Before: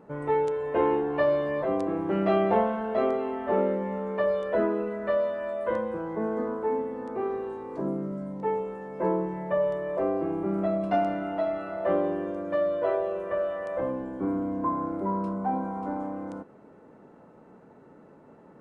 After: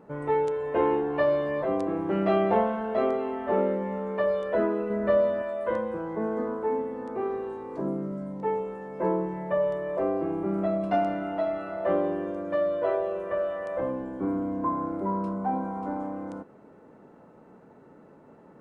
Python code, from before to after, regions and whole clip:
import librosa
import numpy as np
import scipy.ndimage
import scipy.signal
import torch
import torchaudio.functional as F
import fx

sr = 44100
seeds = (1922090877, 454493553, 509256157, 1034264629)

y = fx.chain(x, sr, fx.highpass(hz=42.0, slope=12),
    fx.low_shelf(hz=430.0, db=10.0), at=(4.9, 5.42))